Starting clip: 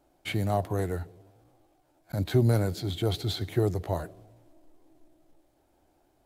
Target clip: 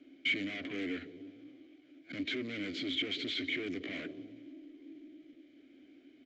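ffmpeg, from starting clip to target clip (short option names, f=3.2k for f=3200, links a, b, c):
-filter_complex "[0:a]apsyclip=26.5dB,acrossover=split=450|3000[a][b][c];[a]acompressor=threshold=-16dB:ratio=4[d];[d][b][c]amix=inputs=3:normalize=0,aresample=16000,asoftclip=type=hard:threshold=-15.5dB,aresample=44100,asplit=3[e][f][g];[e]bandpass=f=270:t=q:w=8,volume=0dB[h];[f]bandpass=f=2.29k:t=q:w=8,volume=-6dB[i];[g]bandpass=f=3.01k:t=q:w=8,volume=-9dB[j];[h][i][j]amix=inputs=3:normalize=0,bass=f=250:g=-9,treble=f=4k:g=-5,volume=-3dB"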